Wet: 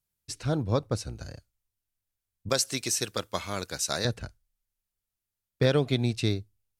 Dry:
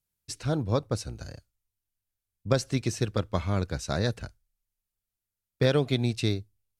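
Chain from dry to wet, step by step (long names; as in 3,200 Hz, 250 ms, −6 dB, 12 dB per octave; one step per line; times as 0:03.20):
0:02.49–0:04.05: RIAA equalisation recording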